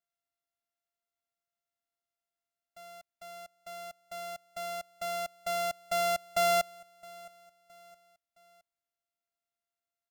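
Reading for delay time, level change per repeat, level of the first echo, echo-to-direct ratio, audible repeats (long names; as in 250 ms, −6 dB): 666 ms, −7.0 dB, −23.0 dB, −22.0 dB, 2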